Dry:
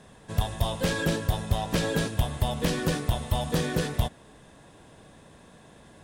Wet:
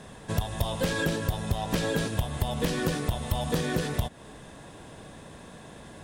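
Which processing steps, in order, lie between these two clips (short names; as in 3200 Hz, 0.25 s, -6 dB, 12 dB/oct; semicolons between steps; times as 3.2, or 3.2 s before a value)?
compressor 6:1, threshold -30 dBFS, peak gain reduction 11.5 dB; gain +6 dB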